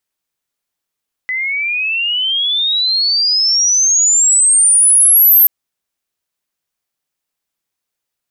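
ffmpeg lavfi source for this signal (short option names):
-f lavfi -i "aevalsrc='pow(10,(-16+11.5*t/4.18)/20)*sin(2*PI*2000*4.18/log(13000/2000)*(exp(log(13000/2000)*t/4.18)-1))':d=4.18:s=44100"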